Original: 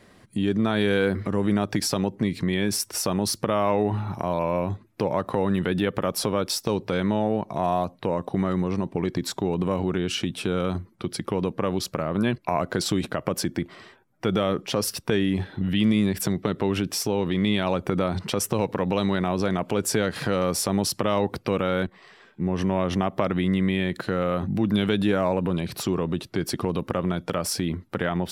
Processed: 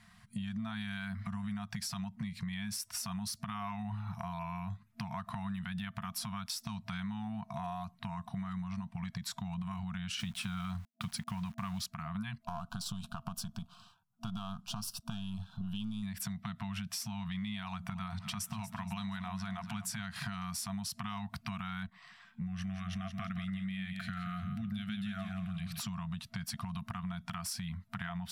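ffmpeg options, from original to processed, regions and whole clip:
ffmpeg -i in.wav -filter_complex "[0:a]asettb=1/sr,asplit=3[link_01][link_02][link_03];[link_01]atrim=end=10.194[link_04];[link_02]atrim=start=10.19:end=11.86,asetpts=PTS-STARTPTS,afade=type=in:duration=0.004:curve=qsin,afade=type=out:start_time=1.666:duration=0.004:curve=qsin,acontrast=81,aeval=exprs='val(0)*gte(abs(val(0)),0.0158)':channel_layout=same[link_05];[link_03]atrim=start=11.856[link_06];[link_04][link_05]acrossfade=duration=0.004:curve1=hsin:curve2=qsin[link_07];[link_07][link_06]acrossfade=duration=0.004:curve1=qsin:curve2=hsin,asettb=1/sr,asplit=3[link_08][link_09][link_10];[link_08]atrim=end=12.434[link_11];[link_09]atrim=start=12.43:end=16.03,asetpts=PTS-STARTPTS,afade=type=in:duration=0.004:curve=qsin,afade=type=out:start_time=3.596:duration=0.004:curve=qsin,aeval=exprs='if(lt(val(0),0),0.447*val(0),val(0))':channel_layout=same,asuperstop=centerf=2000:order=4:qfactor=1.4[link_12];[link_10]atrim=start=16.026[link_13];[link_11][link_12]acrossfade=duration=0.004:curve1=hsin:curve2=qsin[link_14];[link_14][link_13]acrossfade=duration=0.004:curve1=qsin:curve2=hsin,asettb=1/sr,asplit=3[link_15][link_16][link_17];[link_15]atrim=end=17.644[link_18];[link_16]atrim=start=17.64:end=20.03,asetpts=PTS-STARTPTS,afade=type=in:duration=0.004:curve=qsin,afade=type=out:start_time=2.386:duration=0.004:curve=qsin,bandreject=frequency=60:width_type=h:width=6,bandreject=frequency=120:width_type=h:width=6,bandreject=frequency=180:width_type=h:width=6,bandreject=frequency=240:width_type=h:width=6,bandreject=frequency=300:width_type=h:width=6,bandreject=frequency=360:width_type=h:width=6,bandreject=frequency=420:width_type=h:width=6,bandreject=frequency=480:width_type=h:width=6,bandreject=frequency=540:width_type=h:width=6,aecho=1:1:237|474|711|948:0.188|0.0772|0.0317|0.013,atrim=end_sample=105399[link_19];[link_17]atrim=start=20.026[link_20];[link_18][link_19]acrossfade=duration=0.004:curve1=hsin:curve2=qsin[link_21];[link_21][link_20]acrossfade=duration=0.004:curve1=qsin:curve2=hsin,asettb=1/sr,asplit=3[link_22][link_23][link_24];[link_22]atrim=end=22.464[link_25];[link_23]atrim=start=22.46:end=25.79,asetpts=PTS-STARTPTS,afade=type=in:duration=0.004:curve=qsin,afade=type=out:start_time=3.326:duration=0.004:curve=qsin,asuperstop=centerf=930:order=4:qfactor=2.1,aecho=1:1:173|346|519|692:0.422|0.127|0.038|0.0114,atrim=end_sample=146853[link_26];[link_24]atrim=start=25.786[link_27];[link_25][link_26]acrossfade=duration=0.004:curve1=hsin:curve2=qsin[link_28];[link_28][link_27]acrossfade=duration=0.004:curve1=qsin:curve2=hsin,afftfilt=real='re*(1-between(b*sr/4096,230,660))':imag='im*(1-between(b*sr/4096,230,660))':win_size=4096:overlap=0.75,equalizer=frequency=800:width_type=o:width=0.21:gain=-11,acompressor=threshold=-31dB:ratio=6,volume=-5dB" out.wav

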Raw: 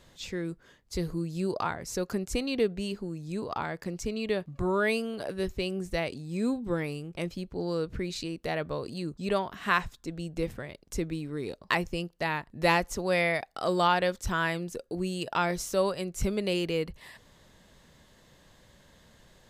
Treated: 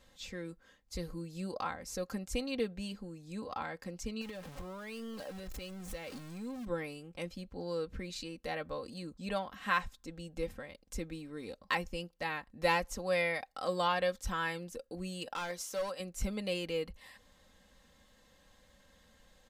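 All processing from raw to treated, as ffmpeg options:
ffmpeg -i in.wav -filter_complex "[0:a]asettb=1/sr,asplit=3[link_01][link_02][link_03];[link_01]atrim=end=4.214[link_04];[link_02]atrim=start=4.21:end=6.65,asetpts=PTS-STARTPTS,afade=type=in:duration=0.004:curve=qsin,afade=type=out:start_time=2.436:duration=0.004:curve=qsin,aeval=exprs='val(0)+0.5*0.0211*sgn(val(0))':channel_layout=same,acompressor=threshold=-34dB:ratio=4:attack=3.2:release=140:knee=1:detection=peak[link_05];[link_03]atrim=start=6.646[link_06];[link_04][link_05]acrossfade=duration=0.004:curve1=hsin:curve2=qsin[link_07];[link_07][link_06]acrossfade=duration=0.004:curve1=qsin:curve2=hsin,asettb=1/sr,asplit=3[link_08][link_09][link_10];[link_08]atrim=end=15.344[link_11];[link_09]atrim=start=15.34:end=16,asetpts=PTS-STARTPTS,afade=type=in:duration=0.004:curve=qsin,afade=type=out:start_time=0.656:duration=0.004:curve=qsin,highpass=frequency=410:poles=1,asoftclip=type=hard:threshold=-26.5dB[link_12];[link_10]atrim=start=15.996[link_13];[link_11][link_12]acrossfade=duration=0.004:curve1=hsin:curve2=qsin[link_14];[link_14][link_13]acrossfade=duration=0.004:curve1=qsin:curve2=hsin,equalizer=frequency=300:width_type=o:width=0.67:gain=-5,aecho=1:1:3.8:0.67,volume=-7dB" out.wav

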